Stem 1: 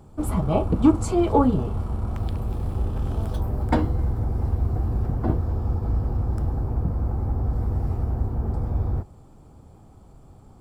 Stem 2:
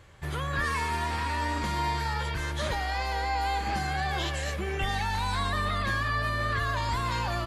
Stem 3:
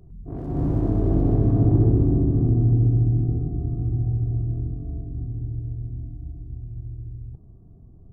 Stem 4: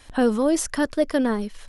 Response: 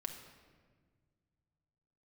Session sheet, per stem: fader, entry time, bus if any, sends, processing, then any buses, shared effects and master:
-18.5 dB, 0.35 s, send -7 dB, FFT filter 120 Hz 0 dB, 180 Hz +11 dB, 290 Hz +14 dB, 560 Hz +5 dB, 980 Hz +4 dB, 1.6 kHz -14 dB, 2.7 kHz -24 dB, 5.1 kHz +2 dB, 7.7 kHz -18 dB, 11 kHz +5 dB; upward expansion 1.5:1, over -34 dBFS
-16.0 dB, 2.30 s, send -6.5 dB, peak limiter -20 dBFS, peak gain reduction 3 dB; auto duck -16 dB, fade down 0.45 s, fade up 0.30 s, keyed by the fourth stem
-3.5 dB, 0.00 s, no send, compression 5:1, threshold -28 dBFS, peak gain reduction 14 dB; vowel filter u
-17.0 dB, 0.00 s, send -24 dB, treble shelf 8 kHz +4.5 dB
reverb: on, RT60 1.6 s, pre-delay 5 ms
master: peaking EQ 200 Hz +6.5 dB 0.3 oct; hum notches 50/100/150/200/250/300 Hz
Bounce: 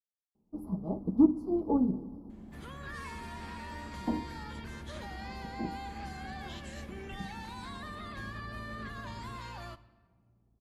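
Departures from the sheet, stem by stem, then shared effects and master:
stem 3: muted; stem 4: muted

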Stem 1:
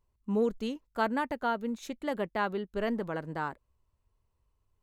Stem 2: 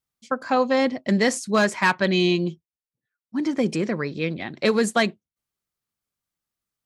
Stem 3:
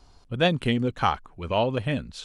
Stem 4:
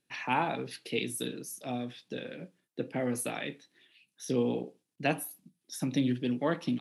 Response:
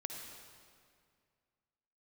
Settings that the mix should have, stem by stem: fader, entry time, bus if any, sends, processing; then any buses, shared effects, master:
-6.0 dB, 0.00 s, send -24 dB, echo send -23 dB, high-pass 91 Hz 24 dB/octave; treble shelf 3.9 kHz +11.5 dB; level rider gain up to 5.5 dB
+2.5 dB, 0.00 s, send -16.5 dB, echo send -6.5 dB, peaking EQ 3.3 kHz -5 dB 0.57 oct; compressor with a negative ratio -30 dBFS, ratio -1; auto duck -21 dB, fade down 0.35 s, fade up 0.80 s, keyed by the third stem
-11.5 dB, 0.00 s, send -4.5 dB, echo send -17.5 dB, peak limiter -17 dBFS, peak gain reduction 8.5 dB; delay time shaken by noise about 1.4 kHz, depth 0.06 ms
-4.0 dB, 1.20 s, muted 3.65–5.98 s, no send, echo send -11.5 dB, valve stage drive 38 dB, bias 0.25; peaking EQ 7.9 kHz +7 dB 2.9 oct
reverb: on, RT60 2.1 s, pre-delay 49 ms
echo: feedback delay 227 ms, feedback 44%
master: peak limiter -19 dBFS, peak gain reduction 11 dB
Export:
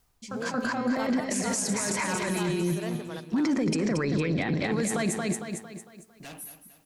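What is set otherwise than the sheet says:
stem 1 -6.0 dB -> -12.5 dB; stem 2 +2.5 dB -> +9.5 dB; stem 3 -11.5 dB -> -20.5 dB

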